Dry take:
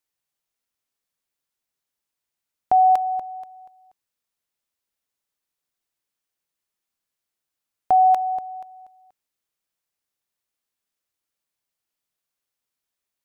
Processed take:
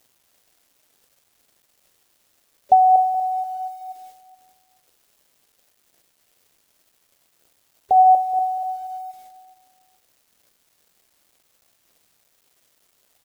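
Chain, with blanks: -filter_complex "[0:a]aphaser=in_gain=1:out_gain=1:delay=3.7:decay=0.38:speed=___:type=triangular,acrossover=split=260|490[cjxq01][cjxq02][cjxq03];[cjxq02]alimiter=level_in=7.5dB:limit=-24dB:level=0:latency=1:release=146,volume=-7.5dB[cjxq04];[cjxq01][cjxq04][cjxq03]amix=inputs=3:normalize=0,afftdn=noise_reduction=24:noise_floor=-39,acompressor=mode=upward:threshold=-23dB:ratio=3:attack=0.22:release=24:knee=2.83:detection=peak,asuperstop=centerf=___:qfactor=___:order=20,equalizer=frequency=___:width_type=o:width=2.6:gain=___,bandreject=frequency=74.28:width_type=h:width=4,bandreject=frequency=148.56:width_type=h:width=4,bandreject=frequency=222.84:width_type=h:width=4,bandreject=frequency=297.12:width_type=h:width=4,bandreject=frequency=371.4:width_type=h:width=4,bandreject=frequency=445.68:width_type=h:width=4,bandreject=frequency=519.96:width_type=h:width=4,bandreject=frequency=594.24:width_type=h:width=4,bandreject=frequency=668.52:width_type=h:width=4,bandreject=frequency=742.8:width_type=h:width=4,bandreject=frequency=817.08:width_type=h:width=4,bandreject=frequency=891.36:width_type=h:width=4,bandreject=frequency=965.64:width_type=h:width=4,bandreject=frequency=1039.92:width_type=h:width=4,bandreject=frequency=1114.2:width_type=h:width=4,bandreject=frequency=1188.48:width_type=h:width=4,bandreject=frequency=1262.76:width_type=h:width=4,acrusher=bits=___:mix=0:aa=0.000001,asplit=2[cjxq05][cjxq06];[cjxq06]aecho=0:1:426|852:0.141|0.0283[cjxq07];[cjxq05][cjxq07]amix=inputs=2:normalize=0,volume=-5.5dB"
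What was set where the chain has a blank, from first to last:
0.67, 1500, 0.78, 570, 10.5, 7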